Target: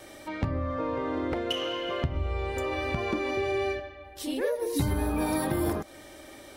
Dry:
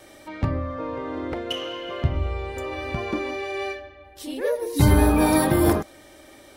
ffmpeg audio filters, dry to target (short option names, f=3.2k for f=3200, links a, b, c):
-filter_complex "[0:a]asettb=1/sr,asplit=3[a][b][c];[a]atrim=end=3.374[d];[b]atrim=start=3.37:end=3.8,asetpts=PTS-STARTPTS,afade=t=in:d=0.004:c=qsin,afade=t=out:st=0.426:d=0.004:c=qsin,equalizer=f=110:t=o:w=2.8:g=15[e];[c]atrim=start=3.796[f];[d][e]acrossfade=d=0.004:c1=hsin:c2=qsin[g];[g][f]acrossfade=d=0.004:c1=qsin:c2=hsin,acompressor=threshold=-26dB:ratio=6,volume=1dB"